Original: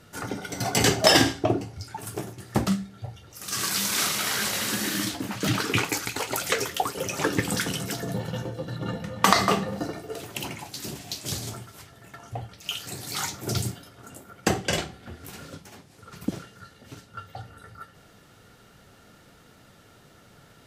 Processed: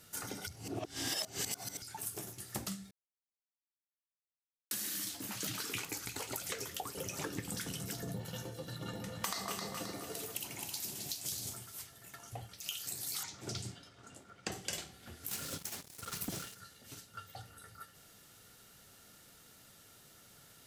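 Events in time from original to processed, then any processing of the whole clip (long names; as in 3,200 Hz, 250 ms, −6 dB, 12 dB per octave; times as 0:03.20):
0:00.47–0:01.82: reverse
0:02.91–0:04.71: silence
0:05.85–0:08.25: spectral tilt −2 dB per octave
0:08.80–0:11.53: delay that swaps between a low-pass and a high-pass 132 ms, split 930 Hz, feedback 53%, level −3 dB
0:13.23–0:14.52: high-frequency loss of the air 110 metres
0:15.31–0:16.55: leveller curve on the samples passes 3
whole clip: first-order pre-emphasis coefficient 0.8; downward compressor 4 to 1, threshold −41 dBFS; level +3 dB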